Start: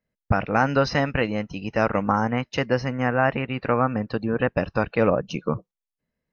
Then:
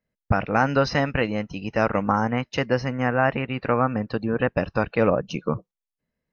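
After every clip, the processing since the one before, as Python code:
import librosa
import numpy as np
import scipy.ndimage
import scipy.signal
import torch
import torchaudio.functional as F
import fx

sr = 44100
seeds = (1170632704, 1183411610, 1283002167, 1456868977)

y = x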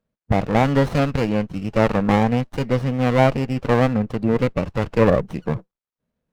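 y = fx.hpss(x, sr, part='harmonic', gain_db=7)
y = fx.running_max(y, sr, window=17)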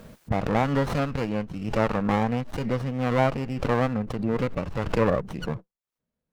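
y = fx.dynamic_eq(x, sr, hz=1200.0, q=1.5, threshold_db=-31.0, ratio=4.0, max_db=4)
y = fx.pre_swell(y, sr, db_per_s=63.0)
y = y * librosa.db_to_amplitude(-7.5)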